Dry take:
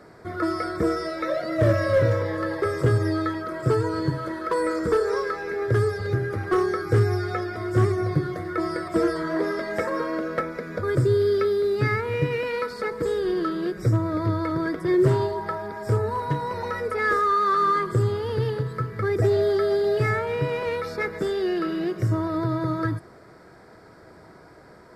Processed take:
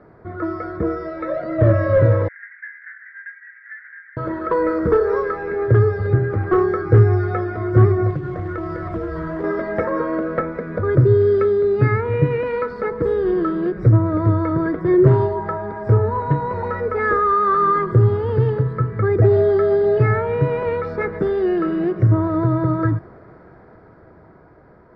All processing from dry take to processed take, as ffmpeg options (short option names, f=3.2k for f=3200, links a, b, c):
-filter_complex "[0:a]asettb=1/sr,asplit=3[a][b][c];[a]atrim=end=2.284[d];[b]atrim=start=2.28:end=4.17,asetpts=PTS-STARTPTS,afade=t=in:d=0.004:c=qsin,afade=t=out:st=1.886:d=0.004:c=qsin,aeval=exprs='abs(val(0))':c=same,asuperpass=centerf=1800:order=8:qfactor=3.1[e];[c]atrim=start=4.166[f];[d][e]acrossfade=d=0.004:c1=hsin:c2=qsin[g];[g][f]acrossfade=d=0.004:c1=qsin:c2=hsin,asettb=1/sr,asplit=3[h][i][j];[h]atrim=end=8.104[k];[i]atrim=start=8.1:end=9.44,asetpts=PTS-STARTPTS,afade=t=in:d=0.004:c=qsin,afade=t=out:st=1.336:d=0.004:c=qsin,asubboost=boost=9.5:cutoff=140,acompressor=threshold=-28dB:ratio=6:attack=3.2:release=140:knee=1:detection=peak,acrusher=bits=4:mode=log:mix=0:aa=0.000001[l];[j]atrim=start=9.436[m];[k][l]acrossfade=d=0.004:c1=hsin:c2=qsin[n];[n][m]acrossfade=d=0.004:c1=qsin:c2=hsin,dynaudnorm=f=150:g=21:m=5.5dB,lowpass=1.6k,lowshelf=f=130:g=6.5"